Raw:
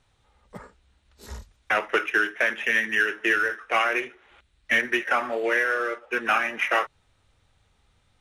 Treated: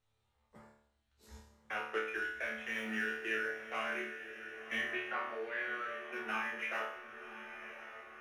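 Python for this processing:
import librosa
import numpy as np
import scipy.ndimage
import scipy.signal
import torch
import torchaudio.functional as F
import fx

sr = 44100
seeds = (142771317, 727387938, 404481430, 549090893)

y = fx.law_mismatch(x, sr, coded='mu', at=(2.68, 3.28))
y = fx.cheby1_lowpass(y, sr, hz=4700.0, order=8, at=(4.9, 6.06))
y = fx.resonator_bank(y, sr, root=38, chord='fifth', decay_s=0.67)
y = fx.echo_diffused(y, sr, ms=1061, feedback_pct=51, wet_db=-10.5)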